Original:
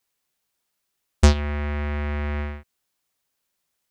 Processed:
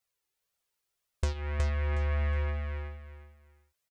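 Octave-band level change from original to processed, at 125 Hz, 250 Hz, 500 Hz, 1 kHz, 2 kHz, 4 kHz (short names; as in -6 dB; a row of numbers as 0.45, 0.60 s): -6.0, -17.0, -8.5, -9.5, -7.5, -13.0 dB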